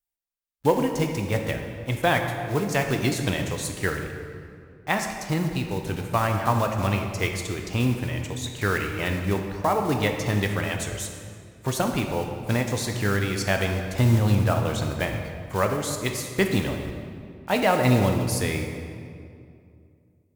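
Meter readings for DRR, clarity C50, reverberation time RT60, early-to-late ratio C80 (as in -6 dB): 3.5 dB, 5.0 dB, 2.4 s, 6.5 dB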